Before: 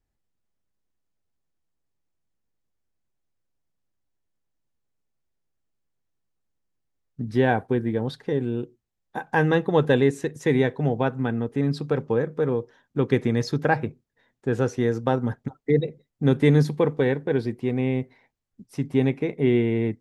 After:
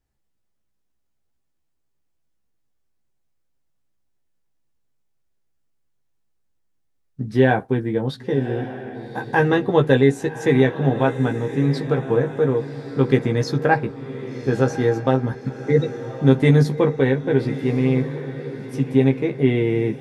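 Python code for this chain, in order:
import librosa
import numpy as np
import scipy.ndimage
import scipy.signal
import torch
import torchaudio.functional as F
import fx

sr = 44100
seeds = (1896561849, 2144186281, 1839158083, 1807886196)

p1 = fx.doubler(x, sr, ms=15.0, db=-4.5)
p2 = p1 + fx.echo_diffused(p1, sr, ms=1140, feedback_pct=41, wet_db=-12, dry=0)
y = F.gain(torch.from_numpy(p2), 2.0).numpy()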